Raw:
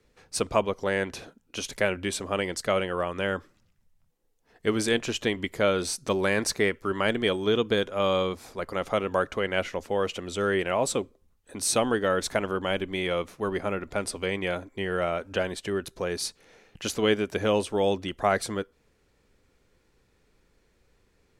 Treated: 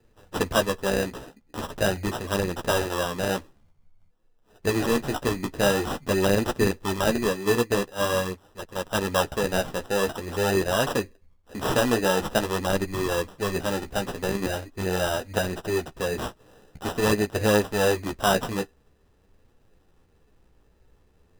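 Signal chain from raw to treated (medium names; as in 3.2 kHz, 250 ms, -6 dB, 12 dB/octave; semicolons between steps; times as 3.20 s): bass shelf 120 Hz +6.5 dB; sample-and-hold 20×; flange 0.46 Hz, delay 8.1 ms, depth 9 ms, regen -20%; 7.23–8.95 s: upward expansion 1.5:1, over -46 dBFS; trim +5 dB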